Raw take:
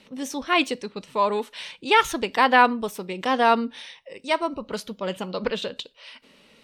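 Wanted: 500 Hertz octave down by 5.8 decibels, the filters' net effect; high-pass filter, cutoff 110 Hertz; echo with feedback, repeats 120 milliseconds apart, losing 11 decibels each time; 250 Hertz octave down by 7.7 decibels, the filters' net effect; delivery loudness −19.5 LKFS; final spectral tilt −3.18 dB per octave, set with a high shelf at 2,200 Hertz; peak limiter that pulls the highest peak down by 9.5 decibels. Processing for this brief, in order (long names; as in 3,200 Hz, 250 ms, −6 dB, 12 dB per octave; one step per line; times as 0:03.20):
high-pass filter 110 Hz
parametric band 250 Hz −7.5 dB
parametric band 500 Hz −5 dB
high-shelf EQ 2,200 Hz −6.5 dB
brickwall limiter −16 dBFS
repeating echo 120 ms, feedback 28%, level −11 dB
level +11.5 dB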